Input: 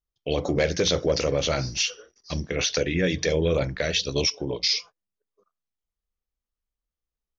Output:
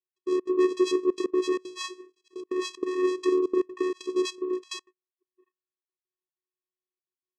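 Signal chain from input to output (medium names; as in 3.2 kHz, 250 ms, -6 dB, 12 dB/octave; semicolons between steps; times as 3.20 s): vocoder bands 4, square 367 Hz; trance gate "x.xxx.xxxxxxxx." 191 bpm -24 dB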